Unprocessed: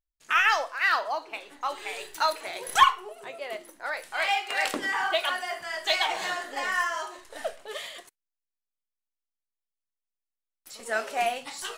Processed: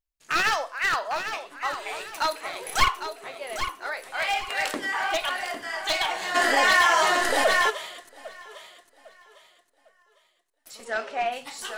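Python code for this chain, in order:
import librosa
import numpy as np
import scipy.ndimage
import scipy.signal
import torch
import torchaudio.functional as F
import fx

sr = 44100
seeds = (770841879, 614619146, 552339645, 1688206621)

y = np.minimum(x, 2.0 * 10.0 ** (-19.0 / 20.0) - x)
y = fx.lowpass(y, sr, hz=fx.line((10.84, 6100.0), (11.31, 3100.0)), slope=12, at=(10.84, 11.31), fade=0.02)
y = fx.echo_feedback(y, sr, ms=803, feedback_pct=34, wet_db=-9.0)
y = fx.env_flatten(y, sr, amount_pct=70, at=(6.34, 7.69), fade=0.02)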